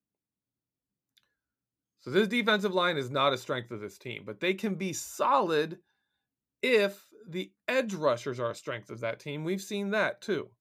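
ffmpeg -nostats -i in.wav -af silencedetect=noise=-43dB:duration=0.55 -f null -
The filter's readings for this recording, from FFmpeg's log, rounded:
silence_start: 0.00
silence_end: 2.07 | silence_duration: 2.07
silence_start: 5.75
silence_end: 6.63 | silence_duration: 0.88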